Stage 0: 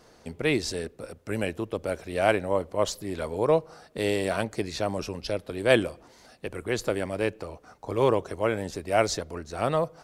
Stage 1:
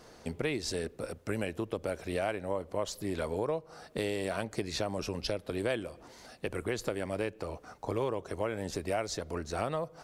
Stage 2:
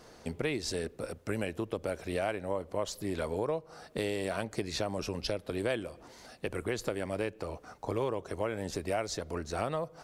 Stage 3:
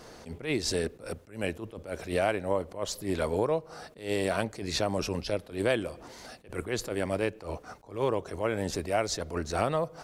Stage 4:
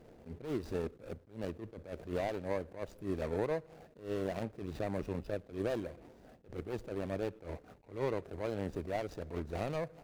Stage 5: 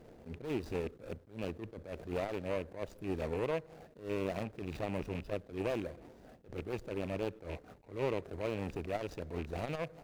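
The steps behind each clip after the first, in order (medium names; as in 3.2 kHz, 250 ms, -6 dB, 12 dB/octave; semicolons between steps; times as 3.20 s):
compression 6:1, threshold -31 dBFS, peak gain reduction 16 dB; trim +1.5 dB
no audible change
attacks held to a fixed rise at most 160 dB/s; trim +5.5 dB
median filter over 41 samples; trim -5 dB
rattle on loud lows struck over -42 dBFS, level -37 dBFS; transformer saturation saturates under 370 Hz; trim +1.5 dB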